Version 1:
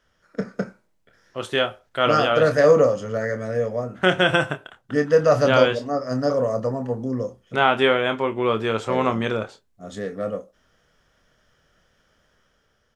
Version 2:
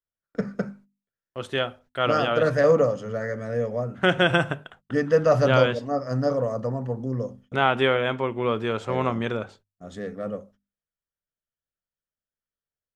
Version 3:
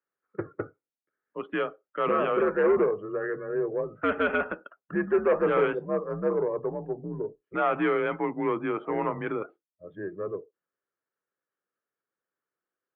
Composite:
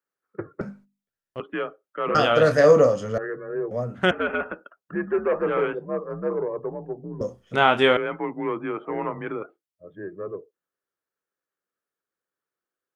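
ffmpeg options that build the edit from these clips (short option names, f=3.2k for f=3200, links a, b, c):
-filter_complex "[1:a]asplit=2[a][b];[0:a]asplit=2[c][d];[2:a]asplit=5[e][f][g][h][i];[e]atrim=end=0.612[j];[a]atrim=start=0.608:end=1.402[k];[f]atrim=start=1.398:end=2.152[l];[c]atrim=start=2.148:end=3.182[m];[g]atrim=start=3.178:end=3.712[n];[b]atrim=start=3.708:end=4.112[o];[h]atrim=start=4.108:end=7.212[p];[d]atrim=start=7.208:end=7.972[q];[i]atrim=start=7.968[r];[j][k]acrossfade=d=0.004:c1=hsin:c2=hsin[s];[s][l]acrossfade=d=0.004:c1=hsin:c2=hsin[t];[t][m]acrossfade=d=0.004:c1=hsin:c2=hsin[u];[u][n]acrossfade=d=0.004:c1=hsin:c2=hsin[v];[v][o]acrossfade=d=0.004:c1=hsin:c2=hsin[w];[w][p]acrossfade=d=0.004:c1=hsin:c2=hsin[x];[x][q]acrossfade=d=0.004:c1=hsin:c2=hsin[y];[y][r]acrossfade=d=0.004:c1=hsin:c2=hsin"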